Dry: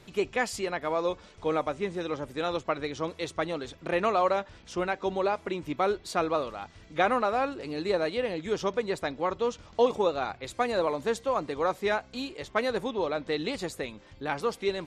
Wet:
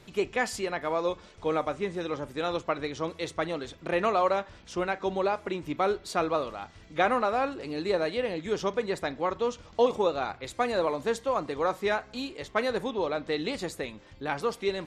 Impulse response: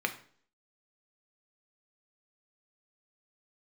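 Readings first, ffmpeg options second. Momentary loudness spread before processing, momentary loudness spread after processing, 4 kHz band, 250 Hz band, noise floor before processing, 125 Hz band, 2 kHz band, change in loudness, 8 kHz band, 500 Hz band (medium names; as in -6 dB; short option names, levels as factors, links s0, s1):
8 LU, 8 LU, 0.0 dB, 0.0 dB, -54 dBFS, 0.0 dB, 0.0 dB, 0.0 dB, 0.0 dB, 0.0 dB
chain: -filter_complex "[0:a]asplit=2[s0][s1];[1:a]atrim=start_sample=2205,asetrate=37926,aresample=44100,adelay=37[s2];[s1][s2]afir=irnorm=-1:irlink=0,volume=0.0596[s3];[s0][s3]amix=inputs=2:normalize=0"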